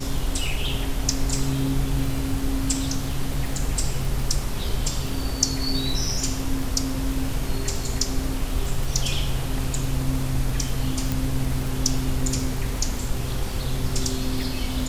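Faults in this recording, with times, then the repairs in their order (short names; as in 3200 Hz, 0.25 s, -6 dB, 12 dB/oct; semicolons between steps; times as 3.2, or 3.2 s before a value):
crackle 38/s -27 dBFS
11.12 pop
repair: de-click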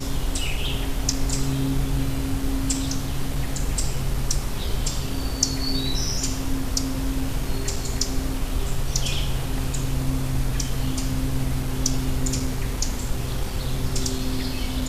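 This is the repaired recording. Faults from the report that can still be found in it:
none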